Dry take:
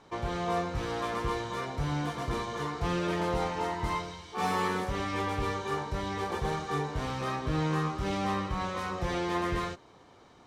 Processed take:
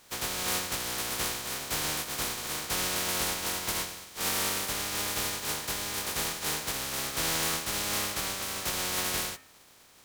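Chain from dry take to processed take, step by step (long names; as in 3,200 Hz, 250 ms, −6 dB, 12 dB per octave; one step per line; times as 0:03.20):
compressing power law on the bin magnitudes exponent 0.2
hum removal 83.41 Hz, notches 36
wrong playback speed 24 fps film run at 25 fps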